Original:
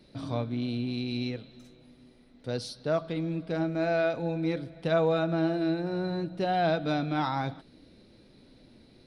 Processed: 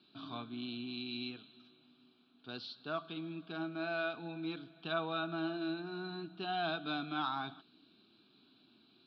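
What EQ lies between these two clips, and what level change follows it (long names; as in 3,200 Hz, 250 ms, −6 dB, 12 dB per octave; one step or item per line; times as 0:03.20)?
loudspeaker in its box 430–3,700 Hz, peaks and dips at 480 Hz −3 dB, 900 Hz −9 dB, 1,900 Hz −5 dB
parametric band 950 Hz −3 dB 2.7 octaves
phaser with its sweep stopped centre 2,000 Hz, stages 6
+3.0 dB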